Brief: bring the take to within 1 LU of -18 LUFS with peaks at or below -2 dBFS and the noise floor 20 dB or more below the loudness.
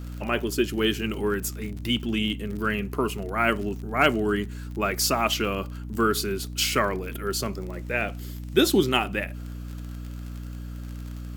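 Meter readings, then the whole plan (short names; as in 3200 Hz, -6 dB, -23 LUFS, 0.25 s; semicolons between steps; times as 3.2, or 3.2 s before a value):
ticks 35/s; hum 60 Hz; harmonics up to 300 Hz; hum level -33 dBFS; loudness -26.0 LUFS; peak -6.0 dBFS; loudness target -18.0 LUFS
-> de-click; notches 60/120/180/240/300 Hz; gain +8 dB; limiter -2 dBFS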